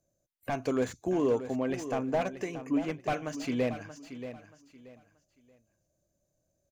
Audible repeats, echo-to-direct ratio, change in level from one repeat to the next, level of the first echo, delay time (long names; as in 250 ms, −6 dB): 3, −11.0 dB, −11.5 dB, −11.5 dB, 630 ms